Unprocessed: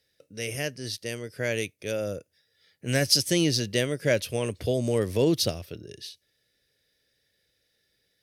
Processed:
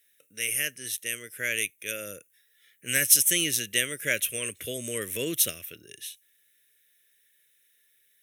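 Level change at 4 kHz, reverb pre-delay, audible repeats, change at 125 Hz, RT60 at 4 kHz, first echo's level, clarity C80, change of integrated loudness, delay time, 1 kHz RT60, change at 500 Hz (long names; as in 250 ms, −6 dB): −2.0 dB, no reverb audible, no echo audible, −13.5 dB, no reverb audible, no echo audible, no reverb audible, +1.0 dB, no echo audible, no reverb audible, −9.5 dB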